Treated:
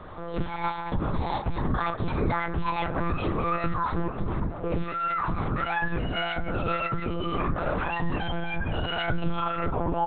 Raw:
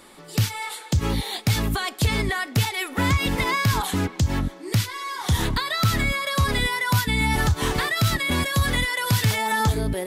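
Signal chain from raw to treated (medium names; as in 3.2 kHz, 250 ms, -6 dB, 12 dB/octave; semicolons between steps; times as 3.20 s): pitch bend over the whole clip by +7.5 st starting unshifted; high-pass 45 Hz 12 dB/octave; resonant high shelf 1.7 kHz -10 dB, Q 1.5; in parallel at +2 dB: compression, threshold -30 dBFS, peak gain reduction 12.5 dB; on the sum: peak limiter -20.5 dBFS, peak gain reduction 11.5 dB; doubling 13 ms -13 dB; on a send at -5.5 dB: reverberation RT60 0.50 s, pre-delay 13 ms; on the sum: monotone LPC vocoder at 8 kHz 170 Hz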